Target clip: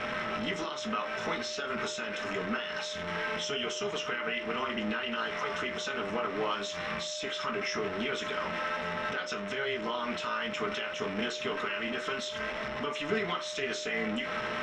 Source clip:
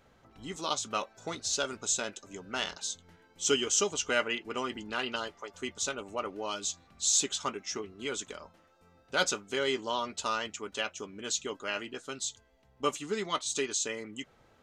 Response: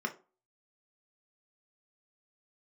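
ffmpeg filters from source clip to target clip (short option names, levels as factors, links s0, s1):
-filter_complex "[0:a]aeval=exprs='val(0)+0.5*0.0158*sgn(val(0))':c=same,lowpass=4400,equalizer=f=2800:w=0.36:g=11,acompressor=threshold=0.0282:ratio=2,alimiter=limit=0.0631:level=0:latency=1:release=76,tremolo=f=280:d=0.667,aeval=exprs='val(0)+0.00891*sin(2*PI*610*n/s)':c=same[s0];[1:a]atrim=start_sample=2205[s1];[s0][s1]afir=irnorm=-1:irlink=0"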